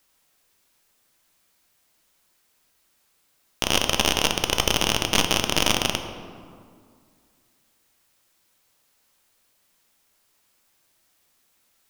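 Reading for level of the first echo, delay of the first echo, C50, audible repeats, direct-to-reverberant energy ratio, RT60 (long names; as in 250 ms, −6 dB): no echo audible, no echo audible, 8.5 dB, no echo audible, 6.0 dB, 2.1 s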